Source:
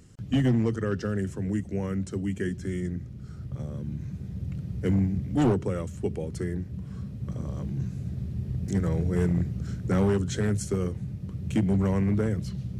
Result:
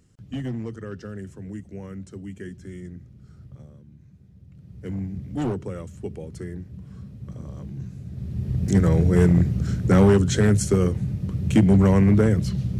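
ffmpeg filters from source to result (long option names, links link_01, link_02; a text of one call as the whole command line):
ffmpeg -i in.wav -af "volume=16.5dB,afade=type=out:start_time=3.43:duration=0.42:silence=0.375837,afade=type=in:start_time=4.5:duration=0.74:silence=0.251189,afade=type=in:start_time=8.09:duration=0.64:silence=0.266073" out.wav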